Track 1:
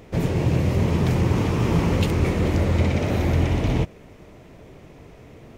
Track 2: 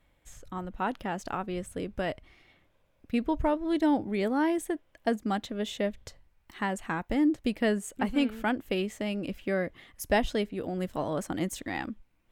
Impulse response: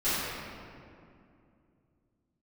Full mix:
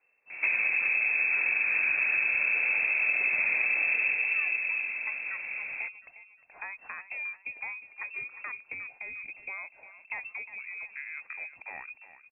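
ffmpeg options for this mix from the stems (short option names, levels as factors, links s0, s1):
-filter_complex "[0:a]equalizer=f=510:w=0.52:g=4,acompressor=threshold=0.0891:ratio=6,adelay=300,volume=1,asplit=2[s0][s1];[s1]volume=0.224[s2];[1:a]acompressor=threshold=0.0178:ratio=2.5,volume=0.631,asplit=2[s3][s4];[s4]volume=0.211[s5];[2:a]atrim=start_sample=2205[s6];[s2][s6]afir=irnorm=-1:irlink=0[s7];[s5]aecho=0:1:356|712|1068|1424|1780|2136:1|0.42|0.176|0.0741|0.0311|0.0131[s8];[s0][s3][s7][s8]amix=inputs=4:normalize=0,lowpass=f=2300:t=q:w=0.5098,lowpass=f=2300:t=q:w=0.6013,lowpass=f=2300:t=q:w=0.9,lowpass=f=2300:t=q:w=2.563,afreqshift=-2700,acompressor=threshold=0.0631:ratio=6"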